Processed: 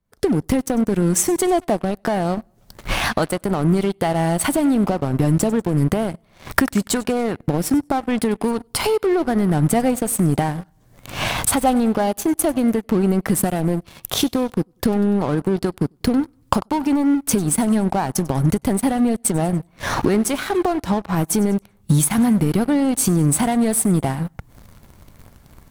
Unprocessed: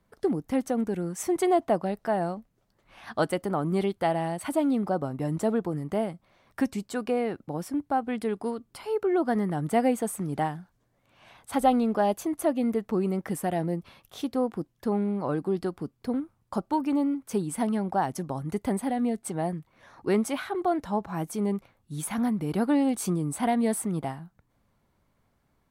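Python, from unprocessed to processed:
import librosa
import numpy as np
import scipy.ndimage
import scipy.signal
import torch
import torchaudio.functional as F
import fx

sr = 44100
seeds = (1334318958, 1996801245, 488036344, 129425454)

p1 = fx.recorder_agc(x, sr, target_db=-17.0, rise_db_per_s=59.0, max_gain_db=30)
p2 = fx.high_shelf(p1, sr, hz=4400.0, db=7.5)
p3 = p2 + fx.echo_feedback(p2, sr, ms=96, feedback_pct=54, wet_db=-20, dry=0)
p4 = fx.leveller(p3, sr, passes=3)
p5 = fx.low_shelf(p4, sr, hz=170.0, db=10.0)
y = F.gain(torch.from_numpy(p5), -8.5).numpy()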